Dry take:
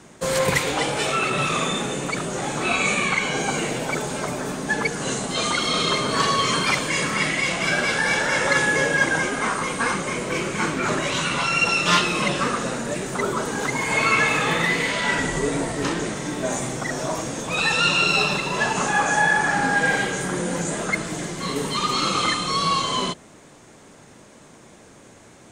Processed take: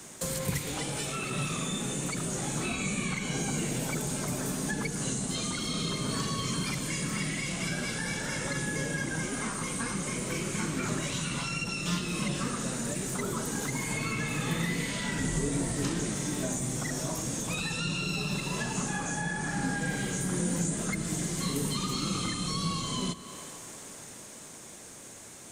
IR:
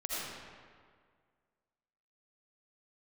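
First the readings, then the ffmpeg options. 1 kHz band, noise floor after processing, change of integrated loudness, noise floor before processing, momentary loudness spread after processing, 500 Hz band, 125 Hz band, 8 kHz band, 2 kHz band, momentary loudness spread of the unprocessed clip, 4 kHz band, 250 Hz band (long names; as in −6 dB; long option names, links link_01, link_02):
−15.5 dB, −47 dBFS, −10.0 dB, −48 dBFS, 2 LU, −12.0 dB, −2.0 dB, −3.5 dB, −14.5 dB, 8 LU, −11.0 dB, −4.5 dB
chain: -filter_complex "[0:a]aemphasis=mode=production:type=75fm,aresample=32000,aresample=44100,dynaudnorm=framelen=120:gausssize=31:maxgain=7dB,asplit=2[link_01][link_02];[1:a]atrim=start_sample=2205[link_03];[link_02][link_03]afir=irnorm=-1:irlink=0,volume=-22dB[link_04];[link_01][link_04]amix=inputs=2:normalize=0,acrossover=split=270[link_05][link_06];[link_06]acompressor=threshold=-30dB:ratio=8[link_07];[link_05][link_07]amix=inputs=2:normalize=0,volume=-3.5dB"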